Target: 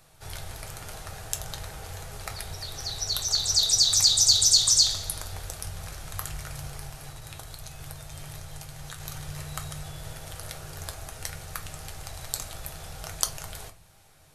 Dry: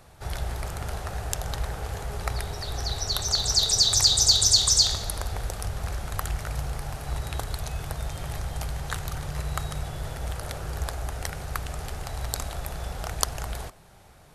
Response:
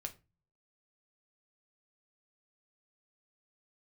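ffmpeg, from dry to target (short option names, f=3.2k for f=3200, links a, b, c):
-filter_complex "[0:a]highshelf=f=2.3k:g=10,asettb=1/sr,asplit=3[a][b][c];[a]atrim=end=6.844[d];[b]atrim=start=6.84:end=9,asetpts=PTS-STARTPTS,afade=t=in:d=0.004:c=qsin,afade=t=out:st=2.156:d=0.004:c=qsin,acompressor=threshold=-29dB:ratio=6[e];[c]atrim=start=8.996[f];[d][e]acrossfade=d=0.004:c1=hsin:c2=qsin[g];[g][f]acrossfade=d=0.004:c1=qsin:c2=hsin[h];[1:a]atrim=start_sample=2205[i];[h][i]afir=irnorm=-1:irlink=0,volume=-5.5dB"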